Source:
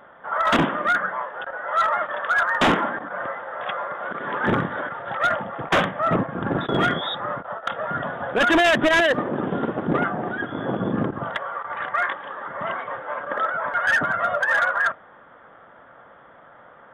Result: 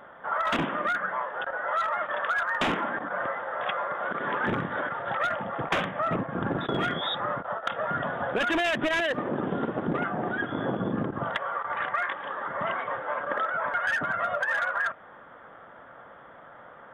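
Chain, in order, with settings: dynamic EQ 2500 Hz, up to +4 dB, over -39 dBFS, Q 2.8; compressor, threshold -25 dBFS, peak gain reduction 10 dB

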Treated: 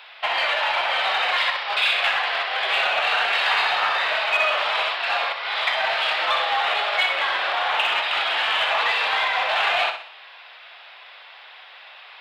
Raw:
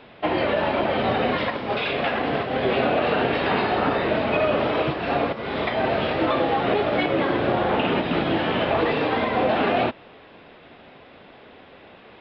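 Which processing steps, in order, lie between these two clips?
HPF 780 Hz 24 dB/oct; high shelf 2100 Hz +12 dB; in parallel at -9.5 dB: hard clip -21.5 dBFS, distortion -11 dB; on the sum: flutter echo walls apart 10.7 m, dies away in 0.47 s; gain -1.5 dB

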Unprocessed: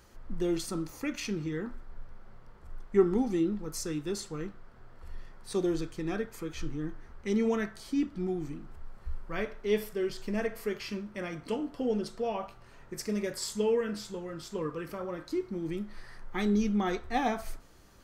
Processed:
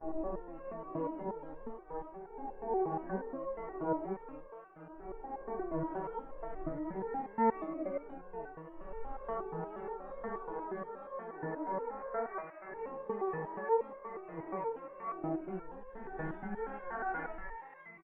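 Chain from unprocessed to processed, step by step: spectral swells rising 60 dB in 2.48 s; gate -34 dBFS, range -25 dB; elliptic low-pass 920 Hz, stop band 60 dB; low shelf 160 Hz -5 dB; comb 6.9 ms, depth 34%; dynamic EQ 100 Hz, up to -5 dB, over -56 dBFS, Q 3.3; limiter -23 dBFS, peak gain reduction 9.5 dB; frequency-shifting echo 0.487 s, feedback 31%, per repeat +150 Hz, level -10 dB; harmoniser +12 st -2 dB; stepped resonator 8.4 Hz 160–540 Hz; gain +4 dB

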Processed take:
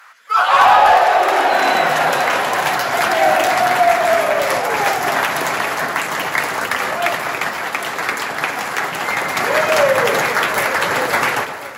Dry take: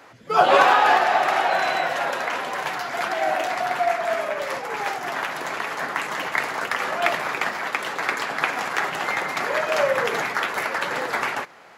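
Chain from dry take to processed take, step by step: high shelf 9500 Hz +11.5 dB; added harmonics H 5 -31 dB, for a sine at -3.5 dBFS; on a send: echo with dull and thin repeats by turns 0.259 s, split 1100 Hz, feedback 79%, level -10.5 dB; on the sum: AGC; high-pass sweep 1300 Hz -> 83 Hz, 0.35–2.41; soft clip -3 dBFS, distortion -19 dB

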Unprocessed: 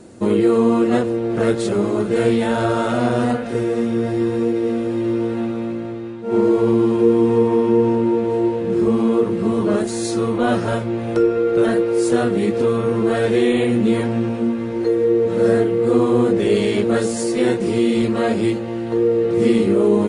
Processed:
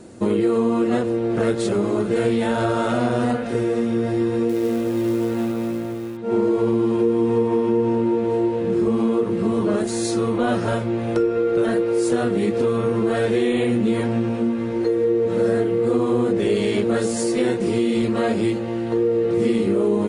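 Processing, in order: compressor 2.5:1, threshold -17 dBFS, peak gain reduction 5.5 dB; 4.49–6.17 companded quantiser 6-bit

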